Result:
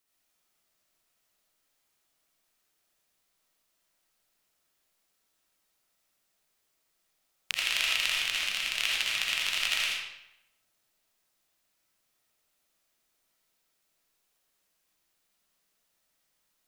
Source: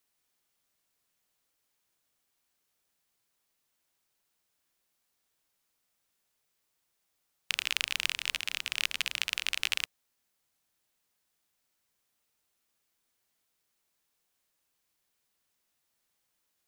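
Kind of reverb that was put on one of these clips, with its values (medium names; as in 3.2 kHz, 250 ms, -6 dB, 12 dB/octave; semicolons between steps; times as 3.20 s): algorithmic reverb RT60 0.85 s, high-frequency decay 0.85×, pre-delay 40 ms, DRR -4 dB; trim -1.5 dB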